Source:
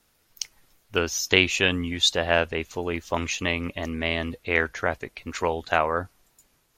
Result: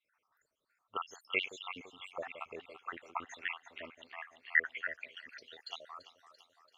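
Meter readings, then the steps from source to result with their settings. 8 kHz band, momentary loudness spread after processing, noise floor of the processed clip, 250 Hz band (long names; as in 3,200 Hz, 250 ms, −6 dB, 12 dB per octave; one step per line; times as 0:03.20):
−28.0 dB, 18 LU, −84 dBFS, −26.0 dB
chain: time-frequency cells dropped at random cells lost 78%
delay that swaps between a low-pass and a high-pass 169 ms, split 800 Hz, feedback 75%, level −11 dB
band-pass filter sweep 1,300 Hz → 4,500 Hz, 0:03.80–0:05.81
level +1 dB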